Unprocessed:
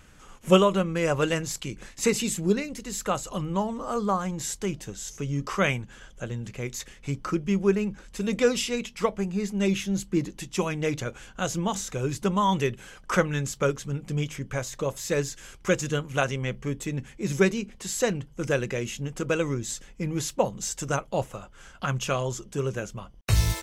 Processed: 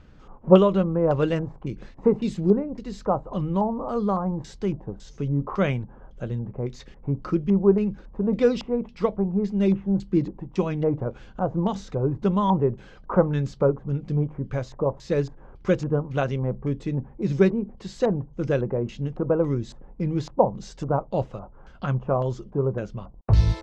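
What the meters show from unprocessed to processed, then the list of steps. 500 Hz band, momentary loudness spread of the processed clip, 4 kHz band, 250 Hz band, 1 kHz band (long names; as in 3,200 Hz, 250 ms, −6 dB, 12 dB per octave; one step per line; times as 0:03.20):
+3.5 dB, 12 LU, −9.0 dB, +4.0 dB, +0.5 dB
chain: auto-filter low-pass square 1.8 Hz 920–4,500 Hz
tilt shelving filter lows +9.5 dB, about 1,400 Hz
level −5 dB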